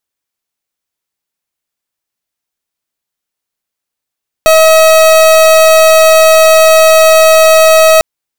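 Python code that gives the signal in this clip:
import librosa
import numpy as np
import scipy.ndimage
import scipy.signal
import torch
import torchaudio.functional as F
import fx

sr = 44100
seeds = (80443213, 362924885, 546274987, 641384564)

y = fx.pulse(sr, length_s=3.55, hz=639.0, level_db=-4.5, duty_pct=38)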